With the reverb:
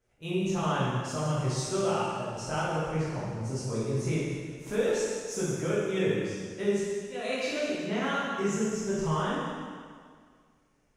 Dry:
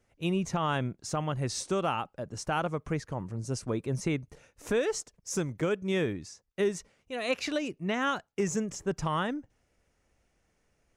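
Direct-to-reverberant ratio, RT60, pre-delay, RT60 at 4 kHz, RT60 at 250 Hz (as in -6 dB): -9.5 dB, 1.9 s, 5 ms, 1.8 s, 1.9 s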